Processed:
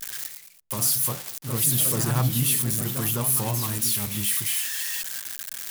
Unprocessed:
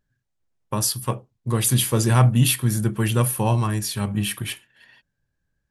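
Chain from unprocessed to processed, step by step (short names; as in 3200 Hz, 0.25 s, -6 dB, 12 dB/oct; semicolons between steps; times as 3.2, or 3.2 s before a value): switching spikes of -11 dBFS; echoes that change speed 0.137 s, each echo +2 st, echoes 3, each echo -6 dB; gain -8.5 dB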